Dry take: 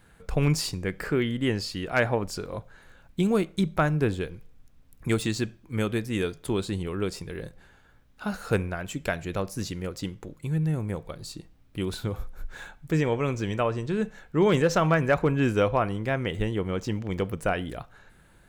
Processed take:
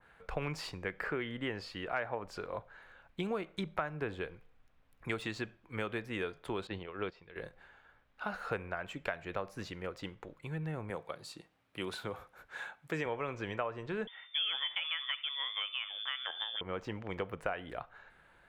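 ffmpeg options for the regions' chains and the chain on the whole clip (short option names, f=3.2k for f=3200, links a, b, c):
-filter_complex "[0:a]asettb=1/sr,asplit=3[a][b][c];[a]atrim=end=6.674[d];[b]atrim=start=6.67:end=7.36,asetpts=PTS-STARTPTS,afade=t=in:d=0.004:c=qsin,afade=t=out:st=0.686:d=0.004:c=qsin,lowpass=f=4.3k:w=0.5412,lowpass=f=4.3k:w=1.3066,aemphasis=mode=production:type=50kf,agate=range=-11dB:threshold=-31dB:ratio=16:release=100:detection=peak[e];[c]atrim=start=7.356[f];[d][e]acrossfade=d=0.004:c1=hsin:c2=qsin[g];[g][f]acrossfade=d=0.004:c1=qsin:c2=hsin,asettb=1/sr,asplit=3[h][i][j];[h]atrim=end=10.904[k];[i]atrim=start=10.9:end=13.06,asetpts=PTS-STARTPTS,afade=t=in:d=0.004:c=qsin,afade=t=out:st=2.156:d=0.004:c=qsin,highpass=120,equalizer=f=10k:w=0.59:g=8.5[l];[j]atrim=start=13.056[m];[k][l]acrossfade=d=0.004:c1=hsin:c2=qsin[n];[n][m]acrossfade=d=0.004:c1=qsin:c2=hsin,asettb=1/sr,asplit=3[o][p][q];[o]atrim=end=14.074[r];[p]atrim=start=14.07:end=16.61,asetpts=PTS-STARTPTS,afade=t=in:d=0.004:c=qsin,afade=t=out:st=2.536:d=0.004:c=qsin,lowpass=f=3.1k:t=q:w=0.5098,lowpass=f=3.1k:t=q:w=0.6013,lowpass=f=3.1k:t=q:w=0.9,lowpass=f=3.1k:t=q:w=2.563,afreqshift=-3600,aecho=1:1:71:0.0794,atrim=end_sample=112014[s];[q]atrim=start=16.606[t];[r][s]acrossfade=d=0.004:c1=hsin:c2=qsin[u];[u][t]acrossfade=d=0.004:c1=qsin:c2=hsin,acrossover=split=500 3400:gain=0.224 1 0.141[v][w][x];[v][w][x]amix=inputs=3:normalize=0,acompressor=threshold=-32dB:ratio=5,adynamicequalizer=threshold=0.00316:dfrequency=2100:dqfactor=0.7:tfrequency=2100:tqfactor=0.7:attack=5:release=100:ratio=0.375:range=2:mode=cutabove:tftype=highshelf"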